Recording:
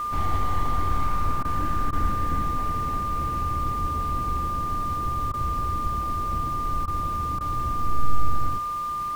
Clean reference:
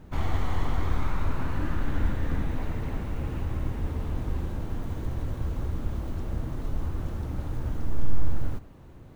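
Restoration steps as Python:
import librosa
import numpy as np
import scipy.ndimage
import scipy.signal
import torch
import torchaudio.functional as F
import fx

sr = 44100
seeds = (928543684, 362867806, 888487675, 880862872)

y = fx.notch(x, sr, hz=1200.0, q=30.0)
y = fx.fix_interpolate(y, sr, at_s=(1.43, 1.91, 5.32, 6.86, 7.39), length_ms=16.0)
y = fx.noise_reduce(y, sr, print_start_s=8.63, print_end_s=9.13, reduce_db=6.0)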